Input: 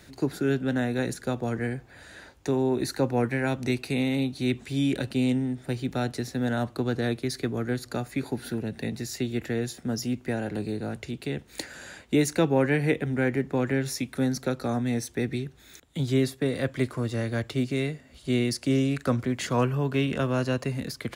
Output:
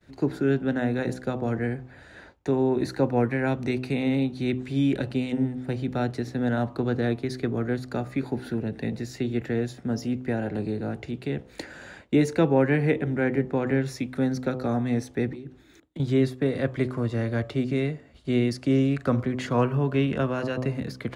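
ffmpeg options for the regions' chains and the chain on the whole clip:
-filter_complex "[0:a]asettb=1/sr,asplit=3[s0][s1][s2];[s0]atrim=end=15.324[s3];[s1]atrim=start=15.32:end=16,asetpts=PTS-STARTPTS,afade=t=in:d=0.004:c=qsin,afade=t=out:st=0.676:d=0.004:c=qsin,equalizer=f=310:w=3.9:g=12,acompressor=threshold=0.0141:ratio=5:attack=3.2:release=140:knee=1:detection=peak,aeval=exprs='0.0266*(abs(mod(val(0)/0.0266+3,4)-2)-1)':c=same[s4];[s2]atrim=start=15.996[s5];[s3][s4]acrossfade=d=0.004:c1=hsin:c2=qsin[s6];[s6][s5]acrossfade=d=0.004:c1=qsin:c2=hsin,lowpass=f=1900:p=1,bandreject=f=63.73:t=h:w=4,bandreject=f=127.46:t=h:w=4,bandreject=f=191.19:t=h:w=4,bandreject=f=254.92:t=h:w=4,bandreject=f=318.65:t=h:w=4,bandreject=f=382.38:t=h:w=4,bandreject=f=446.11:t=h:w=4,bandreject=f=509.84:t=h:w=4,bandreject=f=573.57:t=h:w=4,bandreject=f=637.3:t=h:w=4,bandreject=f=701.03:t=h:w=4,bandreject=f=764.76:t=h:w=4,bandreject=f=828.49:t=h:w=4,bandreject=f=892.22:t=h:w=4,bandreject=f=955.95:t=h:w=4,bandreject=f=1019.68:t=h:w=4,bandreject=f=1083.41:t=h:w=4,bandreject=f=1147.14:t=h:w=4,bandreject=f=1210.87:t=h:w=4,bandreject=f=1274.6:t=h:w=4,agate=range=0.0224:threshold=0.00398:ratio=3:detection=peak,volume=1.33"

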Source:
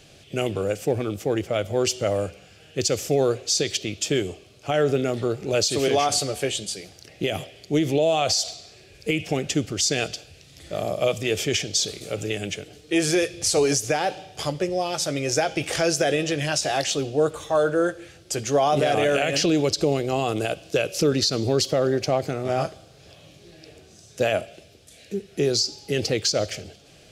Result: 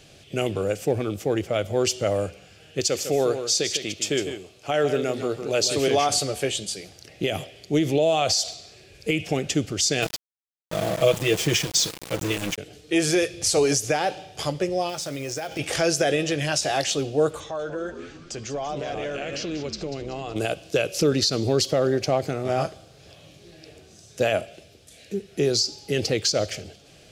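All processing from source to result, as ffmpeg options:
-filter_complex "[0:a]asettb=1/sr,asplit=3[s0][s1][s2];[s0]atrim=end=2.804[s3];[s1]atrim=start=2.8:end=5.76,asetpts=PTS-STARTPTS,afade=t=in:d=0.004:c=qsin,afade=t=out:st=2.956:d=0.004:c=qsin,equalizer=f=60:w=0.32:g=-8,aecho=1:1:154:0.355,atrim=end_sample=130536[s4];[s2]atrim=start=5.756[s5];[s3][s4]acrossfade=d=0.004:c1=hsin:c2=qsin[s6];[s6][s5]acrossfade=d=0.004:c1=qsin:c2=hsin,asettb=1/sr,asplit=3[s7][s8][s9];[s7]atrim=end=10.024[s10];[s8]atrim=start=10.02:end=12.58,asetpts=PTS-STARTPTS,afade=t=in:d=0.004:c=qsin,afade=t=out:st=2.556:d=0.004:c=qsin,lowshelf=f=140:g=6,aecho=1:1:6.1:0.72,atrim=end_sample=112896,aeval=exprs='val(0)*gte(abs(val(0)),0.0398)':c=same[s11];[s9]atrim=start=12.576[s12];[s10][s11]acrossfade=d=0.004:c1=hsin:c2=qsin[s13];[s13][s12]acrossfade=d=0.004:c1=qsin:c2=hsin,asettb=1/sr,asplit=3[s14][s15][s16];[s14]atrim=end=14.894[s17];[s15]atrim=start=14.89:end=15.59,asetpts=PTS-STARTPTS,afade=t=in:d=0.004:c=qsin,afade=t=out:st=0.696:d=0.004:c=qsin,acompressor=threshold=0.0447:ratio=6:attack=3.2:release=140:knee=1:detection=peak,acrusher=bits=4:mode=log:mix=0:aa=0.000001[s18];[s16]atrim=start=15.586[s19];[s17][s18]acrossfade=d=0.004:c1=hsin:c2=qsin[s20];[s20][s19]acrossfade=d=0.004:c1=qsin:c2=hsin,asettb=1/sr,asplit=3[s21][s22][s23];[s21]atrim=end=17.404[s24];[s22]atrim=start=17.4:end=20.36,asetpts=PTS-STARTPTS,afade=t=in:d=0.004:c=qsin,afade=t=out:st=2.956:d=0.004:c=qsin,lowpass=f=7000:w=0.5412,lowpass=f=7000:w=1.3066,acompressor=threshold=0.0178:ratio=2:attack=3.2:release=140:knee=1:detection=peak,asplit=6[s25][s26][s27][s28][s29][s30];[s26]adelay=190,afreqshift=-93,volume=0.282[s31];[s27]adelay=380,afreqshift=-186,volume=0.138[s32];[s28]adelay=570,afreqshift=-279,volume=0.0676[s33];[s29]adelay=760,afreqshift=-372,volume=0.0331[s34];[s30]adelay=950,afreqshift=-465,volume=0.0162[s35];[s25][s31][s32][s33][s34][s35]amix=inputs=6:normalize=0,atrim=end_sample=130536[s36];[s23]atrim=start=20.356[s37];[s24][s36]acrossfade=d=0.004:c1=hsin:c2=qsin[s38];[s38][s37]acrossfade=d=0.004:c1=qsin:c2=hsin"

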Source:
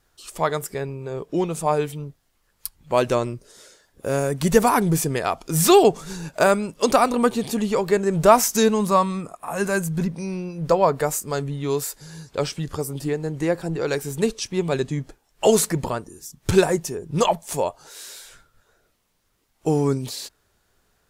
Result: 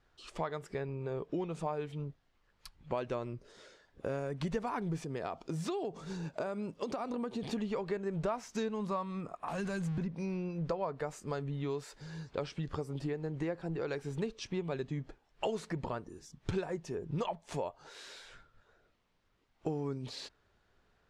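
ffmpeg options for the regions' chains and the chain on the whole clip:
-filter_complex "[0:a]asettb=1/sr,asplit=3[s0][s1][s2];[s0]atrim=end=5.044[s3];[s1]atrim=start=5.04:end=7.43,asetpts=PTS-STARTPTS,afade=t=in:d=0.004:c=qsin,afade=t=out:st=2.386:d=0.004:c=qsin,equalizer=f=1900:t=o:w=2.3:g=-6,acompressor=threshold=0.0562:ratio=3:attack=3.2:release=140:knee=1:detection=peak,highpass=f=110:p=1[s4];[s2]atrim=start=7.426[s5];[s3][s4]acrossfade=d=0.004:c1=hsin:c2=qsin[s6];[s6][s5]acrossfade=d=0.004:c1=qsin:c2=hsin,asettb=1/sr,asplit=3[s7][s8][s9];[s7]atrim=end=9.484[s10];[s8]atrim=start=9.48:end=9.98,asetpts=PTS-STARTPTS,afade=t=in:d=0.004:c=qsin,afade=t=out:st=0.496:d=0.004:c=qsin,aeval=exprs='val(0)+0.5*0.0282*sgn(val(0))':c=same,acrossover=split=230|3000[s11][s12][s13];[s12]acompressor=threshold=0.0316:ratio=6:attack=3.2:release=140:knee=2.83:detection=peak[s14];[s11][s14][s13]amix=inputs=3:normalize=0[s15];[s9]atrim=start=9.976[s16];[s10][s15]acrossfade=d=0.004:c1=hsin:c2=qsin[s17];[s17][s16]acrossfade=d=0.004:c1=qsin:c2=hsin,lowpass=3600,acompressor=threshold=0.0355:ratio=5,volume=0.596"

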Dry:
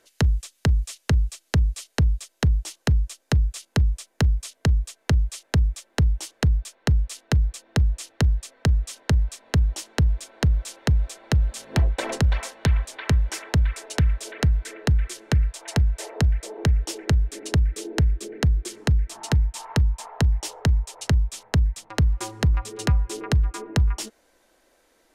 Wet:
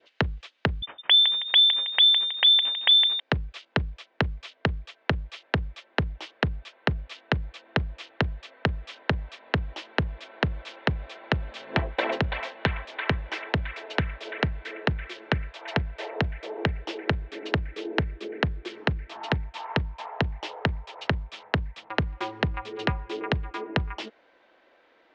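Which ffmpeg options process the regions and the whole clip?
-filter_complex "[0:a]asettb=1/sr,asplit=3[s0][s1][s2];[s0]atrim=end=0.824[s3];[s1]atrim=start=0.82:end=3.2,asetpts=PTS-STARTPTS,afade=t=in:d=0.004:c=qsin,afade=t=out:st=2.376:d=0.004:c=qsin,lowpass=f=3100:t=q:w=0.5098,lowpass=f=3100:t=q:w=0.6013,lowpass=f=3100:t=q:w=0.9,lowpass=f=3100:t=q:w=2.563,afreqshift=-3600,asplit=6[s4][s5][s6][s7][s8][s9];[s5]adelay=160,afreqshift=53,volume=0.355[s10];[s6]adelay=320,afreqshift=106,volume=0.15[s11];[s7]adelay=480,afreqshift=159,volume=0.0624[s12];[s8]adelay=640,afreqshift=212,volume=0.0263[s13];[s9]adelay=800,afreqshift=265,volume=0.0111[s14];[s4][s10][s11][s12][s13][s14]amix=inputs=6:normalize=0,atrim=end_sample=104958[s15];[s2]atrim=start=3.196[s16];[s3][s15]acrossfade=d=0.004:c1=hsin:c2=qsin[s17];[s17][s16]acrossfade=d=0.004:c1=qsin:c2=hsin,lowpass=f=3300:w=0.5412,lowpass=f=3300:w=1.3066,adynamicequalizer=threshold=0.00447:dfrequency=1300:dqfactor=1.7:tfrequency=1300:tqfactor=1.7:attack=5:release=100:ratio=0.375:range=2.5:mode=cutabove:tftype=bell,highpass=f=460:p=1,volume=1.78"

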